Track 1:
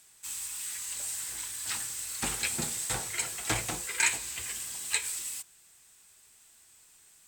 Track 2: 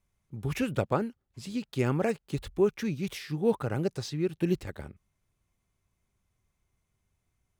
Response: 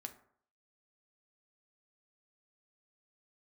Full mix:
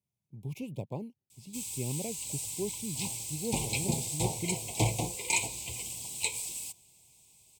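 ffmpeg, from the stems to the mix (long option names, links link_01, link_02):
-filter_complex "[0:a]adynamicequalizer=threshold=0.00316:dfrequency=570:dqfactor=0.76:tfrequency=570:tqfactor=0.76:attack=5:release=100:ratio=0.375:range=3:mode=boostabove:tftype=bell,adelay=1300,volume=-2dB[link_01];[1:a]highpass=140,highshelf=frequency=9700:gain=9,volume=-13.5dB[link_02];[link_01][link_02]amix=inputs=2:normalize=0,asuperstop=centerf=1500:order=12:qfactor=1.3,equalizer=frequency=120:width=0.82:gain=12"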